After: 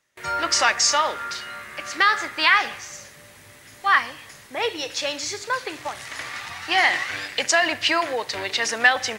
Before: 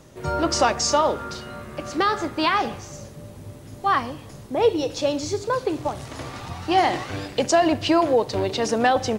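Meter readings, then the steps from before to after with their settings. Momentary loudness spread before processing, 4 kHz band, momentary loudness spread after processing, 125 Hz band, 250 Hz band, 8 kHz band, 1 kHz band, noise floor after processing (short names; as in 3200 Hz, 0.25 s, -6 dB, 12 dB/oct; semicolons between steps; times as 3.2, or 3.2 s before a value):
16 LU, +5.5 dB, 15 LU, -15.0 dB, -12.0 dB, +4.5 dB, -1.5 dB, -48 dBFS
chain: tilt shelf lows -10 dB, about 730 Hz; gate with hold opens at -33 dBFS; bell 1900 Hz +10.5 dB 0.81 oct; gain -5.5 dB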